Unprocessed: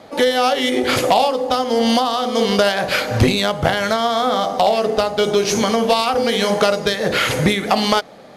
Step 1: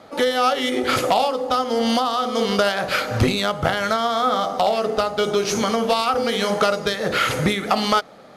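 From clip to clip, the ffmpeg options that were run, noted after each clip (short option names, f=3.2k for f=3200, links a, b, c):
-af "equalizer=f=1.3k:t=o:w=0.22:g=8.5,volume=-4dB"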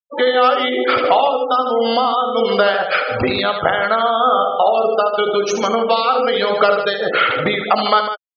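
-af "bass=f=250:g=-12,treble=f=4k:g=-4,afftfilt=real='re*gte(hypot(re,im),0.0708)':imag='im*gte(hypot(re,im),0.0708)':win_size=1024:overlap=0.75,aecho=1:1:75.8|151.6:0.355|0.316,volume=5dB"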